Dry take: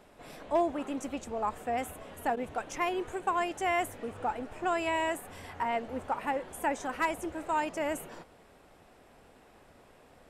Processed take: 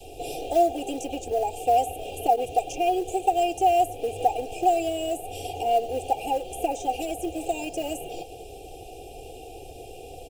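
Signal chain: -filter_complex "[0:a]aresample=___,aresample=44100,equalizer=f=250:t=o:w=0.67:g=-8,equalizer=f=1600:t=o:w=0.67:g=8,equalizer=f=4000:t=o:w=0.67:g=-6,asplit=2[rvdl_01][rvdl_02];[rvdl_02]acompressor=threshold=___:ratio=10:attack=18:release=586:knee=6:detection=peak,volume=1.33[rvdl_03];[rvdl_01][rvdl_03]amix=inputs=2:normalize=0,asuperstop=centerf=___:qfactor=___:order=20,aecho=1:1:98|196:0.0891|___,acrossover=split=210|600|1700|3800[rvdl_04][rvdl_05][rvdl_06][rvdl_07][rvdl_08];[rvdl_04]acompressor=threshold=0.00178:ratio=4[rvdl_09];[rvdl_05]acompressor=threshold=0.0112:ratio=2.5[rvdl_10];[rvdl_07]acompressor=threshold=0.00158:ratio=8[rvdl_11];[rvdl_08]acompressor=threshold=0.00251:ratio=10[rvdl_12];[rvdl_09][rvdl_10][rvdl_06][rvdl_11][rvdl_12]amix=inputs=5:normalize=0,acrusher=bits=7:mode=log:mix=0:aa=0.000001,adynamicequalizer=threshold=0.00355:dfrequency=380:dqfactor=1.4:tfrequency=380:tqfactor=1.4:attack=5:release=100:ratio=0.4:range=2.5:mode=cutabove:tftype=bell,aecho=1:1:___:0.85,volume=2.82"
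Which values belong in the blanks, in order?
32000, 0.0126, 1400, 0.81, 0.0152, 2.5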